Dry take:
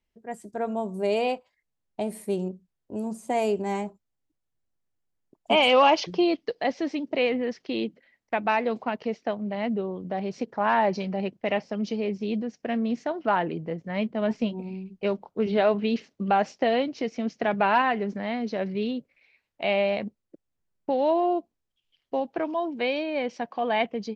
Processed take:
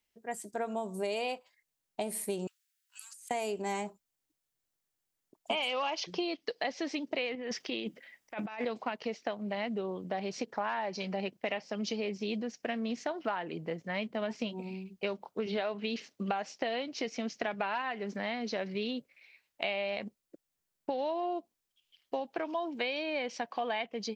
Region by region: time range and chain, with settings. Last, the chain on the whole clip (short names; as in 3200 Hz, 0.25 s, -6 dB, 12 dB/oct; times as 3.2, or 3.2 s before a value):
2.47–3.31 steep high-pass 1400 Hz 48 dB/oct + negative-ratio compressor -58 dBFS
7.35–8.65 notch 4200 Hz, Q 9.5 + negative-ratio compressor -31 dBFS, ratio -0.5
whole clip: tilt +2.5 dB/oct; compressor 10:1, threshold -30 dBFS